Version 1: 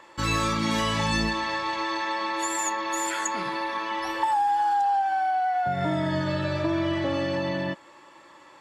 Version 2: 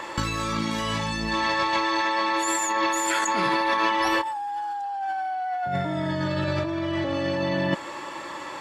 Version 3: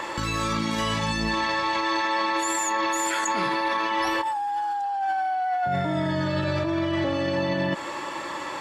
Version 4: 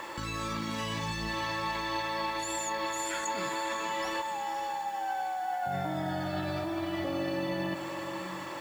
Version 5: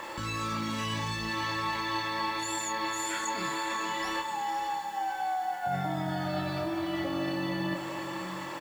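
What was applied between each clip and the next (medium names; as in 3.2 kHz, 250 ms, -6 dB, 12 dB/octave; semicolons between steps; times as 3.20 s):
compressor with a negative ratio -34 dBFS, ratio -1; trim +8 dB
peak limiter -19.5 dBFS, peak gain reduction 8 dB; trim +3 dB
word length cut 8-bit, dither none; echo that smears into a reverb 527 ms, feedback 55%, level -7.5 dB; trim -8.5 dB
doubling 28 ms -5 dB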